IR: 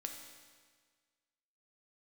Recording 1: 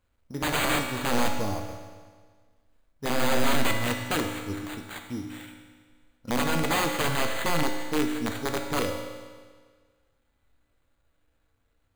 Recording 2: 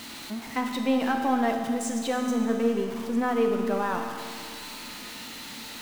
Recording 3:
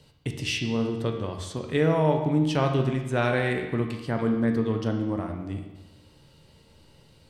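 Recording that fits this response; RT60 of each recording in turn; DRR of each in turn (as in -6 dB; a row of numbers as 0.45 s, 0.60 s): 1; 1.6 s, 2.2 s, 1.1 s; 3.0 dB, 3.0 dB, 3.0 dB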